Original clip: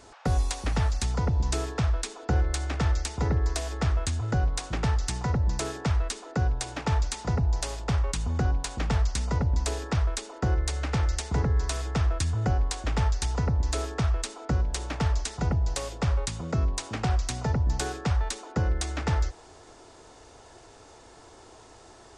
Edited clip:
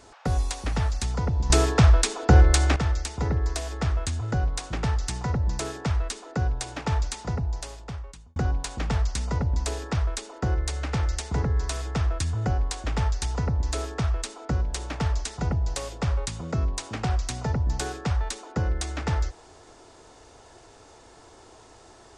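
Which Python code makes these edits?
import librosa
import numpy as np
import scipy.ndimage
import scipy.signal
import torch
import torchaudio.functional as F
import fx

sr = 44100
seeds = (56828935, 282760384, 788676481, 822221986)

y = fx.edit(x, sr, fx.clip_gain(start_s=1.5, length_s=1.26, db=9.5),
    fx.fade_out_span(start_s=7.06, length_s=1.3), tone=tone)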